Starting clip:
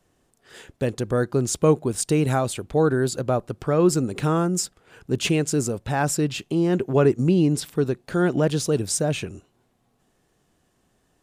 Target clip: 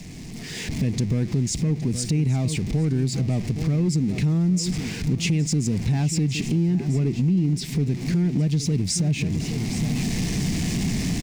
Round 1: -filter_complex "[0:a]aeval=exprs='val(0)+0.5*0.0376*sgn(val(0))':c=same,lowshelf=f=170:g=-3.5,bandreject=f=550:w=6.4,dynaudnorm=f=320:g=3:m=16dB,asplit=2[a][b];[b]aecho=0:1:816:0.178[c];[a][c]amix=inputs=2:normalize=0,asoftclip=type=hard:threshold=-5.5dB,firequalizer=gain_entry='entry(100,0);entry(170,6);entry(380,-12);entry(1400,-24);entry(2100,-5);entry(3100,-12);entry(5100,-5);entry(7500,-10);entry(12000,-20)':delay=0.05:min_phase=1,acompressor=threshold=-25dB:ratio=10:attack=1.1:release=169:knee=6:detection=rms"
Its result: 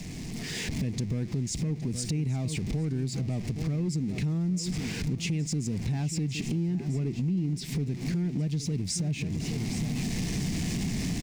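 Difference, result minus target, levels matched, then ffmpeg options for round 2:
compressor: peak gain reduction +7.5 dB
-filter_complex "[0:a]aeval=exprs='val(0)+0.5*0.0376*sgn(val(0))':c=same,lowshelf=f=170:g=-3.5,bandreject=f=550:w=6.4,dynaudnorm=f=320:g=3:m=16dB,asplit=2[a][b];[b]aecho=0:1:816:0.178[c];[a][c]amix=inputs=2:normalize=0,asoftclip=type=hard:threshold=-5.5dB,firequalizer=gain_entry='entry(100,0);entry(170,6);entry(380,-12);entry(1400,-24);entry(2100,-5);entry(3100,-12);entry(5100,-5);entry(7500,-10);entry(12000,-20)':delay=0.05:min_phase=1,acompressor=threshold=-16.5dB:ratio=10:attack=1.1:release=169:knee=6:detection=rms"

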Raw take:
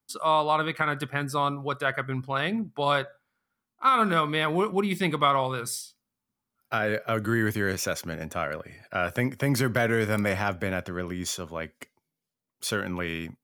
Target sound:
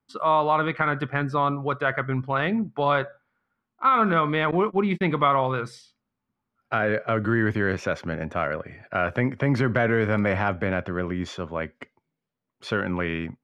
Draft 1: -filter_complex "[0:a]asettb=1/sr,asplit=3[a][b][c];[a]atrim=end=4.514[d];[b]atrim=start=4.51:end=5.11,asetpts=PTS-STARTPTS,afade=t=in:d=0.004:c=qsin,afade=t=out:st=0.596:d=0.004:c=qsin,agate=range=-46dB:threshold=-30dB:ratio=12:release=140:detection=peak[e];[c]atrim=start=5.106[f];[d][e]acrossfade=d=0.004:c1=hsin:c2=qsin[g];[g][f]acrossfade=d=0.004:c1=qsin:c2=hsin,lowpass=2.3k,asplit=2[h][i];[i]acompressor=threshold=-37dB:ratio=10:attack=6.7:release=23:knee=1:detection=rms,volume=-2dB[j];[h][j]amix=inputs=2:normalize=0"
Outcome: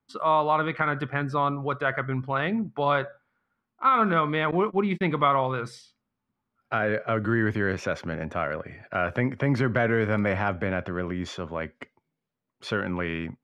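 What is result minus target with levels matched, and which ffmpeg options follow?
compressor: peak gain reduction +8 dB
-filter_complex "[0:a]asettb=1/sr,asplit=3[a][b][c];[a]atrim=end=4.514[d];[b]atrim=start=4.51:end=5.11,asetpts=PTS-STARTPTS,afade=t=in:d=0.004:c=qsin,afade=t=out:st=0.596:d=0.004:c=qsin,agate=range=-46dB:threshold=-30dB:ratio=12:release=140:detection=peak[e];[c]atrim=start=5.106[f];[d][e]acrossfade=d=0.004:c1=hsin:c2=qsin[g];[g][f]acrossfade=d=0.004:c1=qsin:c2=hsin,lowpass=2.3k,asplit=2[h][i];[i]acompressor=threshold=-28dB:ratio=10:attack=6.7:release=23:knee=1:detection=rms,volume=-2dB[j];[h][j]amix=inputs=2:normalize=0"

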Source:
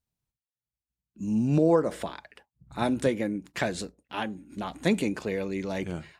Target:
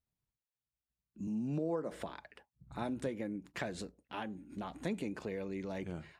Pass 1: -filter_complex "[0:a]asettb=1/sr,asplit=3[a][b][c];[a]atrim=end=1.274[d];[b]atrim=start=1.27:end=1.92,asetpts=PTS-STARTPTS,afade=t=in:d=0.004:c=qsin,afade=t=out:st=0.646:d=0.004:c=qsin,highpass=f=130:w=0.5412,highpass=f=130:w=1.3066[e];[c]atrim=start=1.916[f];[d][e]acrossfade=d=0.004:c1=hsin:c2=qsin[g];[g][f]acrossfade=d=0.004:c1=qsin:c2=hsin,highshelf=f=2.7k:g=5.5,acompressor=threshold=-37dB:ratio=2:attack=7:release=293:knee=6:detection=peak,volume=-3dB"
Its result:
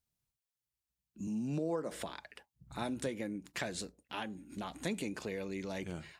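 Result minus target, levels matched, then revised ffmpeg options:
4000 Hz band +5.5 dB
-filter_complex "[0:a]asettb=1/sr,asplit=3[a][b][c];[a]atrim=end=1.274[d];[b]atrim=start=1.27:end=1.92,asetpts=PTS-STARTPTS,afade=t=in:d=0.004:c=qsin,afade=t=out:st=0.646:d=0.004:c=qsin,highpass=f=130:w=0.5412,highpass=f=130:w=1.3066[e];[c]atrim=start=1.916[f];[d][e]acrossfade=d=0.004:c1=hsin:c2=qsin[g];[g][f]acrossfade=d=0.004:c1=qsin:c2=hsin,highshelf=f=2.7k:g=-6,acompressor=threshold=-37dB:ratio=2:attack=7:release=293:knee=6:detection=peak,volume=-3dB"

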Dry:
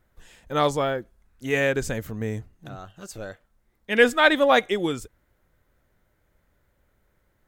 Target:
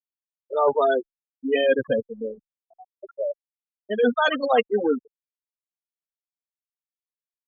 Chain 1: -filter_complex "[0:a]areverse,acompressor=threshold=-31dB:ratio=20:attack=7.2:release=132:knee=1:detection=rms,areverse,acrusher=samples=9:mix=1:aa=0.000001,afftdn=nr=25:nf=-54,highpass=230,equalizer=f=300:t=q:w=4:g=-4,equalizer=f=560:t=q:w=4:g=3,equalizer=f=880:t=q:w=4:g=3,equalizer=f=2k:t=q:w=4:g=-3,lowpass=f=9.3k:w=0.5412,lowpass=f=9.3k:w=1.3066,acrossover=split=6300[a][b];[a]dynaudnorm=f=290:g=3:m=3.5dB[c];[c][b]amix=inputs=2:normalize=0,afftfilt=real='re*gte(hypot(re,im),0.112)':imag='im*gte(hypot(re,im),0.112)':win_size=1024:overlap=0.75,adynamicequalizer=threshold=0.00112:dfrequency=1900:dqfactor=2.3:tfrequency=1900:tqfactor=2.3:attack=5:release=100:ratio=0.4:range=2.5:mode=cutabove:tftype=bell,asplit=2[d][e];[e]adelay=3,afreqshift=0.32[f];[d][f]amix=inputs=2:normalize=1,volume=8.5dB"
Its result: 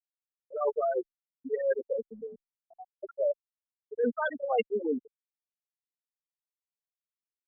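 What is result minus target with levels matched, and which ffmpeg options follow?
compressor: peak gain reduction +7.5 dB
-filter_complex "[0:a]areverse,acompressor=threshold=-23dB:ratio=20:attack=7.2:release=132:knee=1:detection=rms,areverse,acrusher=samples=9:mix=1:aa=0.000001,afftdn=nr=25:nf=-54,highpass=230,equalizer=f=300:t=q:w=4:g=-4,equalizer=f=560:t=q:w=4:g=3,equalizer=f=880:t=q:w=4:g=3,equalizer=f=2k:t=q:w=4:g=-3,lowpass=f=9.3k:w=0.5412,lowpass=f=9.3k:w=1.3066,acrossover=split=6300[a][b];[a]dynaudnorm=f=290:g=3:m=3.5dB[c];[c][b]amix=inputs=2:normalize=0,afftfilt=real='re*gte(hypot(re,im),0.112)':imag='im*gte(hypot(re,im),0.112)':win_size=1024:overlap=0.75,adynamicequalizer=threshold=0.00112:dfrequency=1900:dqfactor=2.3:tfrequency=1900:tqfactor=2.3:attack=5:release=100:ratio=0.4:range=2.5:mode=cutabove:tftype=bell,asplit=2[d][e];[e]adelay=3,afreqshift=0.32[f];[d][f]amix=inputs=2:normalize=1,volume=8.5dB"

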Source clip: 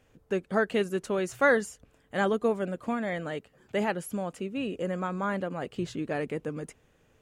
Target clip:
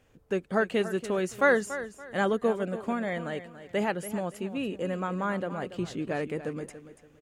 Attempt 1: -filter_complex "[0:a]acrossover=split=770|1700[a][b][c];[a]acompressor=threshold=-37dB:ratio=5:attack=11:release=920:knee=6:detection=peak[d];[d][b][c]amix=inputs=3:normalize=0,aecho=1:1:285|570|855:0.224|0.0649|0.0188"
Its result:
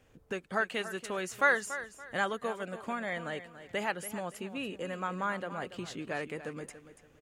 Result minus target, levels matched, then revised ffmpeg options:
compressor: peak gain reduction +14.5 dB
-af "aecho=1:1:285|570|855:0.224|0.0649|0.0188"

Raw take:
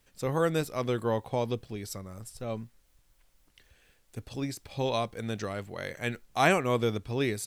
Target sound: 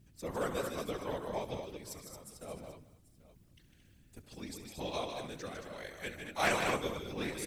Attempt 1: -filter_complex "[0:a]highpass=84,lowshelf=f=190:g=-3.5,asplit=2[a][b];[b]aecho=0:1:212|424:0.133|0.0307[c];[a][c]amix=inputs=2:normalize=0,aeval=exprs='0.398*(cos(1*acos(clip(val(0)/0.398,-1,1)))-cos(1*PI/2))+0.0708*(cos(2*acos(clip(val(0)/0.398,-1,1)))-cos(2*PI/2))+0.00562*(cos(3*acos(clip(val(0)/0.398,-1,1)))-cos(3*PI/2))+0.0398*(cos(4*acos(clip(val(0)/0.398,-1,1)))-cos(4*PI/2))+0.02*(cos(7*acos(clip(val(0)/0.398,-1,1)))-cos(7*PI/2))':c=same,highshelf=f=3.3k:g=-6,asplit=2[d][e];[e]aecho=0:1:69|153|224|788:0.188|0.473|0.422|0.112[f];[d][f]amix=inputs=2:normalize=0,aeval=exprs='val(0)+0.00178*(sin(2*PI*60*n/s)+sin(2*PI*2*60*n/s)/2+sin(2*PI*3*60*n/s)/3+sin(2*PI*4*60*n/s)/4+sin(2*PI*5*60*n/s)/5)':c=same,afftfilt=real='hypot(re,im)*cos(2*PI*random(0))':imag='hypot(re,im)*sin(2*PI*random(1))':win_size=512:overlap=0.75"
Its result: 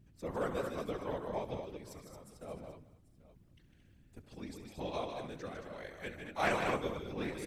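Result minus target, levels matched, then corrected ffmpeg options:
8000 Hz band -8.0 dB
-filter_complex "[0:a]highpass=84,lowshelf=f=190:g=-3.5,asplit=2[a][b];[b]aecho=0:1:212|424:0.133|0.0307[c];[a][c]amix=inputs=2:normalize=0,aeval=exprs='0.398*(cos(1*acos(clip(val(0)/0.398,-1,1)))-cos(1*PI/2))+0.0708*(cos(2*acos(clip(val(0)/0.398,-1,1)))-cos(2*PI/2))+0.00562*(cos(3*acos(clip(val(0)/0.398,-1,1)))-cos(3*PI/2))+0.0398*(cos(4*acos(clip(val(0)/0.398,-1,1)))-cos(4*PI/2))+0.02*(cos(7*acos(clip(val(0)/0.398,-1,1)))-cos(7*PI/2))':c=same,highshelf=f=3.3k:g=5,asplit=2[d][e];[e]aecho=0:1:69|153|224|788:0.188|0.473|0.422|0.112[f];[d][f]amix=inputs=2:normalize=0,aeval=exprs='val(0)+0.00178*(sin(2*PI*60*n/s)+sin(2*PI*2*60*n/s)/2+sin(2*PI*3*60*n/s)/3+sin(2*PI*4*60*n/s)/4+sin(2*PI*5*60*n/s)/5)':c=same,afftfilt=real='hypot(re,im)*cos(2*PI*random(0))':imag='hypot(re,im)*sin(2*PI*random(1))':win_size=512:overlap=0.75"

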